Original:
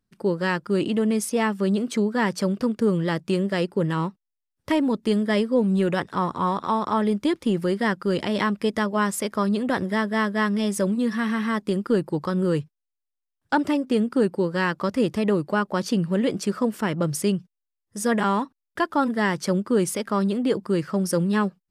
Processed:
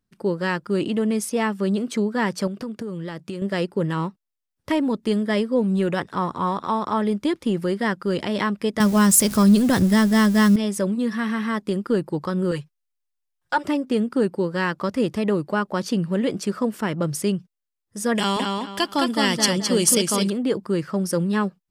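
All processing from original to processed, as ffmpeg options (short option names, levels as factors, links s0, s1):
-filter_complex "[0:a]asettb=1/sr,asplit=3[s0][s1][s2];[s0]atrim=end=2.474[s3];[s1]atrim=start=2.47:end=3.42,asetpts=PTS-STARTPTS,afade=t=in:d=0.004:c=qsin,afade=t=out:st=0.946:d=0.004:c=qsin,highpass=53,acompressor=threshold=0.0501:ratio=12:attack=3.2:release=140:knee=1:detection=peak[s4];[s2]atrim=start=3.416[s5];[s3][s4]acrossfade=d=0.004:c1=hsin:c2=qsin[s6];[s6][s5]acrossfade=d=0.004:c1=qsin:c2=hsin,asettb=1/sr,asplit=3[s7][s8][s9];[s7]atrim=end=8.804[s10];[s8]atrim=start=8.8:end=10.56,asetpts=PTS-STARTPTS,afade=t=in:d=0.004:c=qsin,afade=t=out:st=1.756:d=0.004:c=qsin,aeval=exprs='val(0)+0.5*0.0178*sgn(val(0))':c=same,bass=f=250:g=13,treble=f=4000:g=14[s11];[s9]atrim=start=10.556[s12];[s10][s11]acrossfade=d=0.004:c1=hsin:c2=qsin[s13];[s13][s12]acrossfade=d=0.004:c1=qsin:c2=hsin,asettb=1/sr,asplit=3[s14][s15][s16];[s14]atrim=end=12.514[s17];[s15]atrim=start=12.51:end=13.65,asetpts=PTS-STARTPTS,afade=t=in:d=0.004:c=qsin,afade=t=out:st=1.136:d=0.004:c=qsin,equalizer=f=230:t=o:w=1.7:g=-12,aecho=1:1:5.6:0.79,atrim=end_sample=50274[s18];[s16]atrim=start=13.646[s19];[s17][s18]acrossfade=d=0.004:c1=hsin:c2=qsin[s20];[s20][s19]acrossfade=d=0.004:c1=qsin:c2=hsin,asettb=1/sr,asplit=3[s21][s22][s23];[s21]atrim=end=18.154[s24];[s22]atrim=start=18.15:end=20.3,asetpts=PTS-STARTPTS,afade=t=in:d=0.004:c=qsin,afade=t=out:st=2.146:d=0.004:c=qsin,highshelf=f=2300:t=q:w=1.5:g=12.5,bandreject=f=3800:w=8.1,asplit=2[s25][s26];[s26]adelay=214,lowpass=f=4900:p=1,volume=0.708,asplit=2[s27][s28];[s28]adelay=214,lowpass=f=4900:p=1,volume=0.31,asplit=2[s29][s30];[s30]adelay=214,lowpass=f=4900:p=1,volume=0.31,asplit=2[s31][s32];[s32]adelay=214,lowpass=f=4900:p=1,volume=0.31[s33];[s25][s27][s29][s31][s33]amix=inputs=5:normalize=0,atrim=end_sample=94815[s34];[s23]atrim=start=20.296[s35];[s24][s34]acrossfade=d=0.004:c1=hsin:c2=qsin[s36];[s36][s35]acrossfade=d=0.004:c1=qsin:c2=hsin"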